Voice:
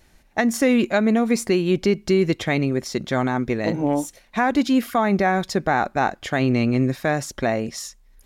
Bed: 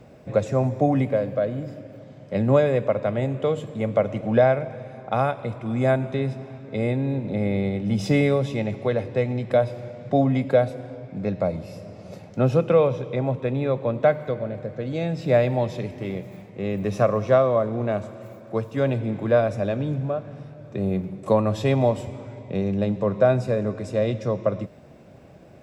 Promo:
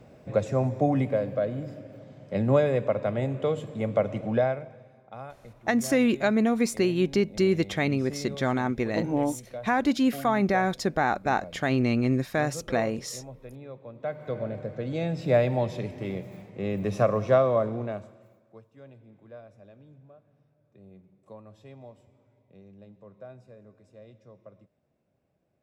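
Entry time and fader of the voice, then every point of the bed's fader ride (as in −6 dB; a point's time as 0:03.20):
5.30 s, −4.5 dB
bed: 0:04.23 −3.5 dB
0:05.08 −19 dB
0:13.94 −19 dB
0:14.38 −3 dB
0:17.67 −3 dB
0:18.69 −27 dB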